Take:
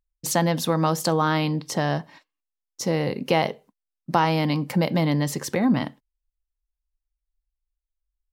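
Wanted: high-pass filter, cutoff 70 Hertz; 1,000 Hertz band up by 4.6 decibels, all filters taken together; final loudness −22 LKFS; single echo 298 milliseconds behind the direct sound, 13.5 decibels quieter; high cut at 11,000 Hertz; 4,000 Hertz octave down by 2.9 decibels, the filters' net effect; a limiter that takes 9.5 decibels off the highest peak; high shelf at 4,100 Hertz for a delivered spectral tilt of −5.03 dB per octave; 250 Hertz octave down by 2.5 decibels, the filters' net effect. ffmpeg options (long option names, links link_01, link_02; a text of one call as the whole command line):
ffmpeg -i in.wav -af "highpass=70,lowpass=11000,equalizer=frequency=250:width_type=o:gain=-4,equalizer=frequency=1000:width_type=o:gain=6,equalizer=frequency=4000:width_type=o:gain=-7.5,highshelf=frequency=4100:gain=5,alimiter=limit=-13dB:level=0:latency=1,aecho=1:1:298:0.211,volume=3.5dB" out.wav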